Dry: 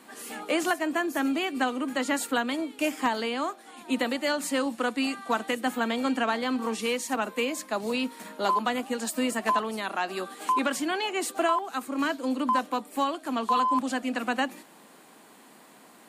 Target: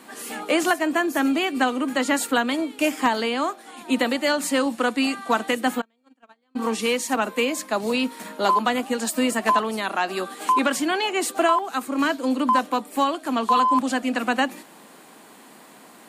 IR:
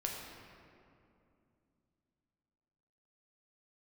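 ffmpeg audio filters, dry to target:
-filter_complex "[0:a]asplit=3[link_01][link_02][link_03];[link_01]afade=type=out:start_time=5.8:duration=0.02[link_04];[link_02]agate=range=-46dB:threshold=-20dB:ratio=16:detection=peak,afade=type=in:start_time=5.8:duration=0.02,afade=type=out:start_time=6.55:duration=0.02[link_05];[link_03]afade=type=in:start_time=6.55:duration=0.02[link_06];[link_04][link_05][link_06]amix=inputs=3:normalize=0,volume=5.5dB"

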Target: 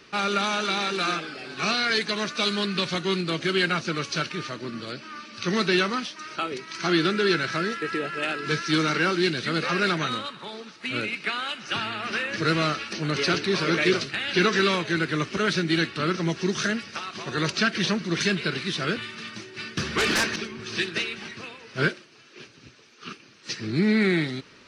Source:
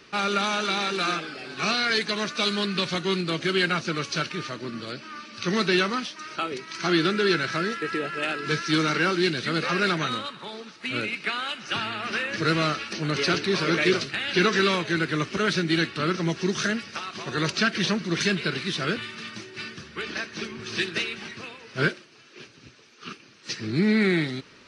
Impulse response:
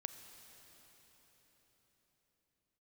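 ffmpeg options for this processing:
-filter_complex "[0:a]asettb=1/sr,asplit=3[link_01][link_02][link_03];[link_01]atrim=end=19.774[link_04];[link_02]atrim=start=19.77:end=20.36,asetpts=PTS-STARTPTS,afade=type=in:duration=0.004:curve=qsin,afade=type=out:start_time=0.586:duration=0.004:curve=qsin,aeval=exprs='0.119*sin(PI/2*3.16*val(0)/0.119)':channel_layout=same[link_05];[link_03]atrim=start=20.356[link_06];[link_04][link_05]acrossfade=duration=0.004:curve1=hsin:curve2=qsin[link_07];[link_07][link_06]acrossfade=duration=0.004:curve1=qsin:curve2=hsin"

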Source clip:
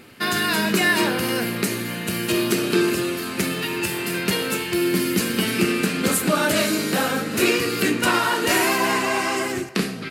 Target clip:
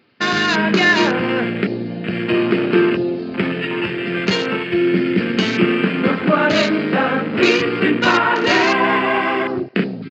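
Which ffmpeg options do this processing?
ffmpeg -i in.wav -af "aresample=11025,aresample=44100,afwtdn=0.0398,highpass=110,volume=5.5dB" out.wav

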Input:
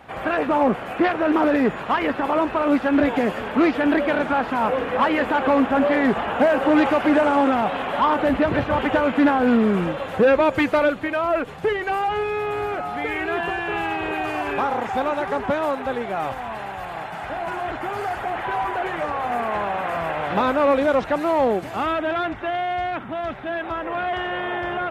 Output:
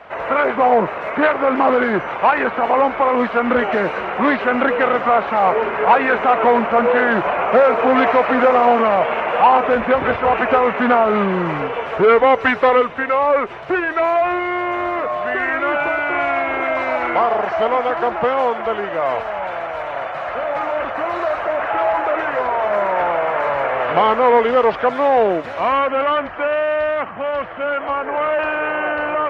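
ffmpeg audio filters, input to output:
ffmpeg -i in.wav -filter_complex "[0:a]asetrate=37485,aresample=44100,acrossover=split=460 4400:gain=0.224 1 0.0794[link_01][link_02][link_03];[link_01][link_02][link_03]amix=inputs=3:normalize=0,volume=8dB" out.wav

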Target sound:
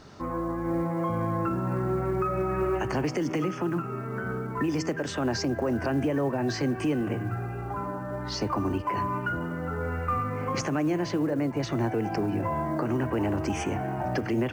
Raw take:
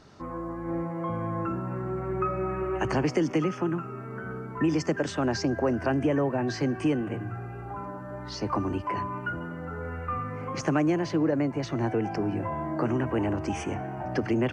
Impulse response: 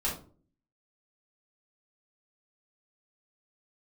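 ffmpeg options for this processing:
-af "acrusher=bits=9:mode=log:mix=0:aa=0.000001,alimiter=limit=-23dB:level=0:latency=1:release=197,bandreject=frequency=160.2:width_type=h:width=4,bandreject=frequency=320.4:width_type=h:width=4,bandreject=frequency=480.6:width_type=h:width=4,bandreject=frequency=640.8:width_type=h:width=4,bandreject=frequency=801:width_type=h:width=4,bandreject=frequency=961.2:width_type=h:width=4,bandreject=frequency=1121.4:width_type=h:width=4,bandreject=frequency=1281.6:width_type=h:width=4,bandreject=frequency=1441.8:width_type=h:width=4,bandreject=frequency=1602:width_type=h:width=4,bandreject=frequency=1762.2:width_type=h:width=4,bandreject=frequency=1922.4:width_type=h:width=4,bandreject=frequency=2082.6:width_type=h:width=4,bandreject=frequency=2242.8:width_type=h:width=4,bandreject=frequency=2403:width_type=h:width=4,bandreject=frequency=2563.2:width_type=h:width=4,bandreject=frequency=2723.4:width_type=h:width=4,bandreject=frequency=2883.6:width_type=h:width=4,bandreject=frequency=3043.8:width_type=h:width=4,bandreject=frequency=3204:width_type=h:width=4,bandreject=frequency=3364.2:width_type=h:width=4,bandreject=frequency=3524.4:width_type=h:width=4,bandreject=frequency=3684.6:width_type=h:width=4,volume=4.5dB"

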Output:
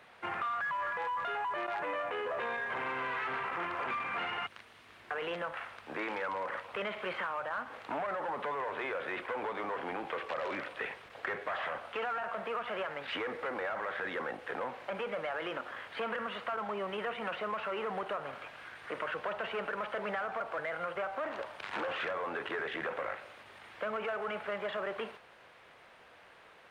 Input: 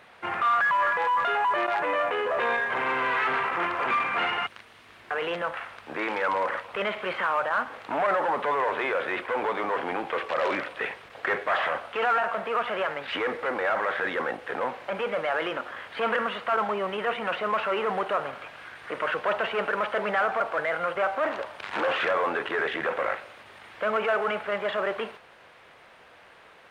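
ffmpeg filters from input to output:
ffmpeg -i in.wav -filter_complex "[0:a]acrossover=split=180[link_01][link_02];[link_02]acompressor=threshold=-28dB:ratio=6[link_03];[link_01][link_03]amix=inputs=2:normalize=0,volume=-5dB" out.wav

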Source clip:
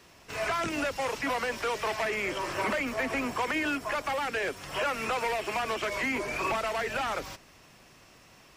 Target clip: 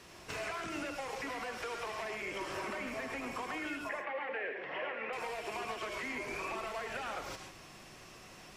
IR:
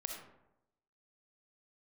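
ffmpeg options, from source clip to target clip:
-filter_complex "[0:a]acompressor=threshold=-39dB:ratio=12,asettb=1/sr,asplit=3[link_01][link_02][link_03];[link_01]atrim=end=3.894[link_04];[link_02]atrim=start=3.89:end=5.13,asetpts=PTS-STARTPTS,afade=type=in:duration=0.004:curve=qsin,afade=type=out:start_time=1.236:duration=0.004:curve=qsin,highpass=270,equalizer=frequency=510:width_type=q:width=4:gain=5,equalizer=frequency=1300:width_type=q:width=4:gain=-6,equalizer=frequency=1900:width_type=q:width=4:gain=8,lowpass=frequency=2700:width=0.5412,lowpass=frequency=2700:width=1.3066[link_05];[link_03]atrim=start=5.126[link_06];[link_04][link_05]acrossfade=duration=0.004:curve1=hsin:curve2=qsin[link_07];[link_07][link_06]acrossfade=duration=0.004:curve1=qsin:curve2=hsin[link_08];[1:a]atrim=start_sample=2205,afade=type=out:start_time=0.14:duration=0.01,atrim=end_sample=6615,asetrate=25137,aresample=44100[link_09];[link_08][link_09]afir=irnorm=-1:irlink=0,volume=1dB"

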